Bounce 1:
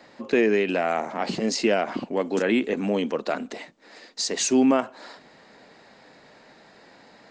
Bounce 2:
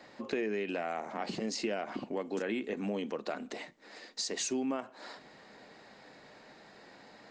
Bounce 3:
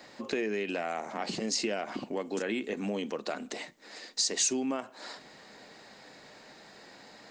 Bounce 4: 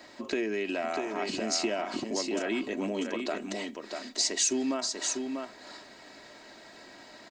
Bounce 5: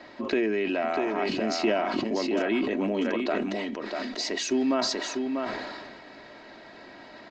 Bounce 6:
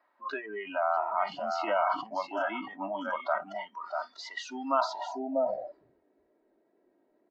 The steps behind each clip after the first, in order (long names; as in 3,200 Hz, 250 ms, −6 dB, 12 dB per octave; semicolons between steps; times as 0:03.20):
downward compressor 2.5 to 1, threshold −32 dBFS, peak gain reduction 11.5 dB; on a send at −15 dB: convolution reverb RT60 0.30 s, pre-delay 3 ms; on the sum: level −3.5 dB
high-shelf EQ 4,800 Hz +11 dB; level +1.5 dB
comb filter 3.1 ms, depth 49%; on a send: single-tap delay 644 ms −5 dB
high-frequency loss of the air 210 metres; level that may fall only so fast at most 30 dB per second; level +5 dB
tape wow and flutter 24 cents; band-pass filter sweep 1,100 Hz → 380 Hz, 0:04.78–0:05.82; noise reduction from a noise print of the clip's start 24 dB; level +8 dB